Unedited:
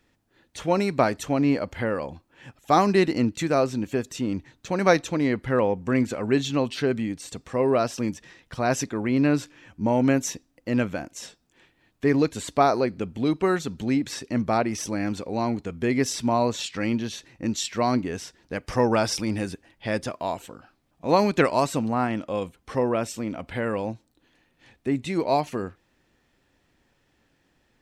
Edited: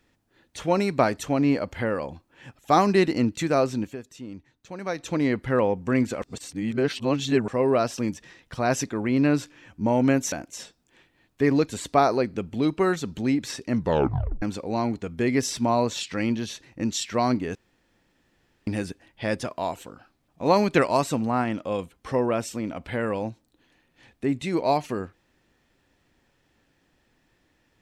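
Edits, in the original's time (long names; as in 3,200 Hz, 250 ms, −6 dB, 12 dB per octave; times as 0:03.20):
0:03.82–0:05.11: duck −11.5 dB, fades 0.14 s
0:06.22–0:07.48: reverse
0:10.32–0:10.95: remove
0:14.38: tape stop 0.67 s
0:18.18–0:19.30: fill with room tone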